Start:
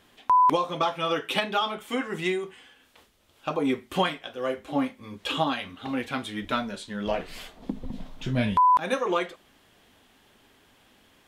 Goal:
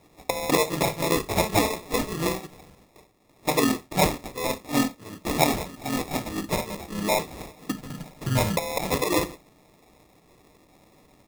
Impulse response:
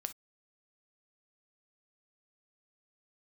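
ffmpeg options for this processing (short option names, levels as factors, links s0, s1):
-filter_complex "[0:a]highpass=63,acrusher=bits=5:mode=log:mix=0:aa=0.000001,aecho=1:1:6.5:0.84,asplit=2[s0][s1];[s1]asetrate=37084,aresample=44100,atempo=1.18921,volume=0.562[s2];[s0][s2]amix=inputs=2:normalize=0,acrusher=samples=29:mix=1:aa=0.000001,highshelf=f=4000:g=5,asplit=2[s3][s4];[1:a]atrim=start_sample=2205[s5];[s4][s5]afir=irnorm=-1:irlink=0,volume=1.19[s6];[s3][s6]amix=inputs=2:normalize=0,volume=0.473"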